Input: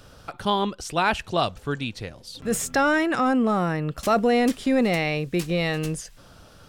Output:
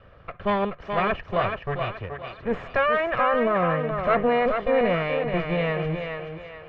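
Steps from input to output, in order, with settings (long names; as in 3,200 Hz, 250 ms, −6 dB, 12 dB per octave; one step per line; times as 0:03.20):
lower of the sound and its delayed copy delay 1.7 ms
low-pass filter 2,500 Hz 24 dB per octave
hum removal 75.9 Hz, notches 2
on a send: feedback echo with a high-pass in the loop 427 ms, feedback 39%, high-pass 290 Hz, level −5 dB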